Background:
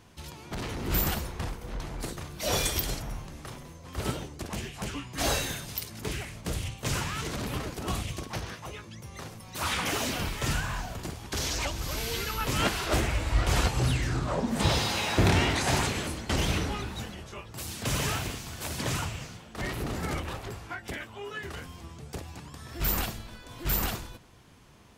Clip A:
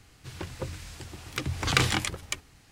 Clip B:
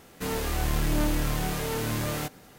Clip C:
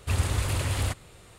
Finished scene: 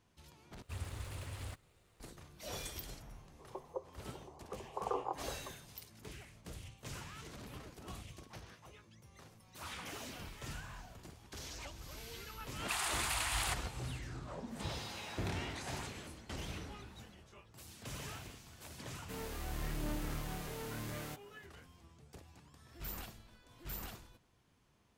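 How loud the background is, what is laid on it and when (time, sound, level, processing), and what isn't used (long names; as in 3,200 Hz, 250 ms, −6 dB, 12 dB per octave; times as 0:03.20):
background −16.5 dB
0:00.62: overwrite with C −17.5 dB + gap after every zero crossing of 0.067 ms
0:03.14: mix in A −3 dB + Chebyshev band-pass filter 380–1,100 Hz, order 4
0:12.61: mix in C −1.5 dB + Butterworth high-pass 680 Hz 96 dB per octave
0:18.88: mix in B −14 dB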